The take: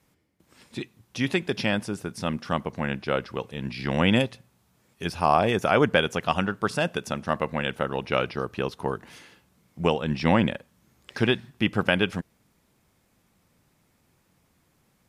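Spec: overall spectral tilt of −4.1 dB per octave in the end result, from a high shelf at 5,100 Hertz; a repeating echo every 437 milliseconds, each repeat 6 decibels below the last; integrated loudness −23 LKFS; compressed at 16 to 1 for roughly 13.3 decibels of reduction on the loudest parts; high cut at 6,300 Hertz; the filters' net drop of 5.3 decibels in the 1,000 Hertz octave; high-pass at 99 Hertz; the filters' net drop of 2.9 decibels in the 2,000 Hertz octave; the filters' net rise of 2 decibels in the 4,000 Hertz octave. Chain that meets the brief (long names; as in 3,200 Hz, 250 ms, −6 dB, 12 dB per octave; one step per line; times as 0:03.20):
high-pass filter 99 Hz
low-pass filter 6,300 Hz
parametric band 1,000 Hz −7 dB
parametric band 2,000 Hz −3.5 dB
parametric band 4,000 Hz +3.5 dB
high-shelf EQ 5,100 Hz +4.5 dB
downward compressor 16 to 1, threshold −30 dBFS
repeating echo 437 ms, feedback 50%, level −6 dB
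level +13 dB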